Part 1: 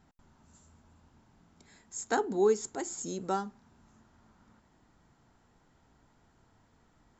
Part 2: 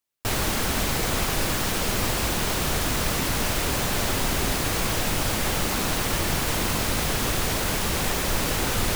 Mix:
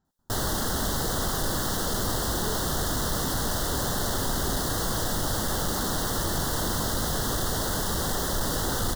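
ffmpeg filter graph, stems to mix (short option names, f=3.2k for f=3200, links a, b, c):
-filter_complex "[0:a]volume=-12dB[a];[1:a]adelay=50,volume=-0.5dB[b];[a][b]amix=inputs=2:normalize=0,asoftclip=type=tanh:threshold=-19.5dB,asuperstop=centerf=2400:order=4:qfactor=1.6"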